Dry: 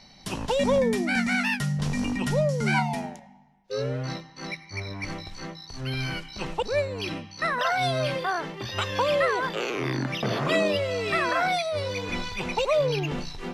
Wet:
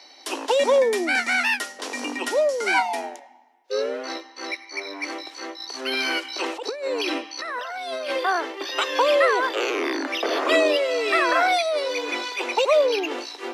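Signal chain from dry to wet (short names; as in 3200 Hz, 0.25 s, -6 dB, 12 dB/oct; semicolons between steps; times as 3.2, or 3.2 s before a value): steep high-pass 280 Hz 72 dB/oct; 5.6–8.1 negative-ratio compressor -33 dBFS, ratio -1; gain +5 dB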